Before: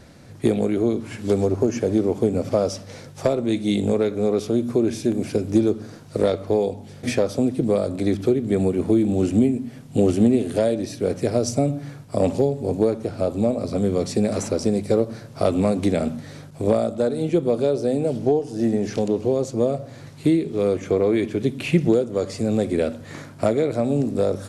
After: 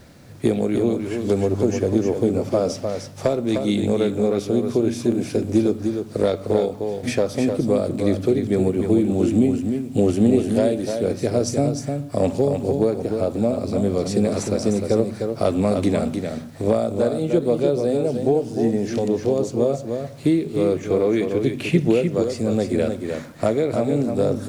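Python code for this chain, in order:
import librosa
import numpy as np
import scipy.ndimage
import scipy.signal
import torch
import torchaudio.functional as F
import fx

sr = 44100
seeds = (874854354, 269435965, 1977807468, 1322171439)

p1 = fx.quant_dither(x, sr, seeds[0], bits=10, dither='none')
y = p1 + fx.echo_single(p1, sr, ms=304, db=-6.0, dry=0)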